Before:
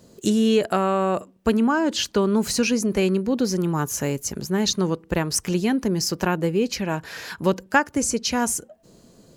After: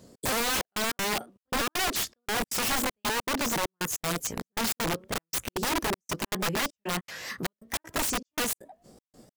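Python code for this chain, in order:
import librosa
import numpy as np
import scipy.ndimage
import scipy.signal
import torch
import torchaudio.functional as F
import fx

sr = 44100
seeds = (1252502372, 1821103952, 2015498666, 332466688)

y = fx.pitch_ramps(x, sr, semitones=4.0, every_ms=323)
y = fx.step_gate(y, sr, bpm=197, pattern='xx.xxxxx..', floor_db=-60.0, edge_ms=4.5)
y = (np.mod(10.0 ** (21.0 / 20.0) * y + 1.0, 2.0) - 1.0) / 10.0 ** (21.0 / 20.0)
y = y * 10.0 ** (-1.5 / 20.0)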